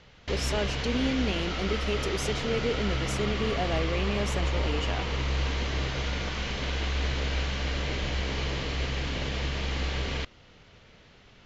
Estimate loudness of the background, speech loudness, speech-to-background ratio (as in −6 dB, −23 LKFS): −31.0 LKFS, −32.0 LKFS, −1.0 dB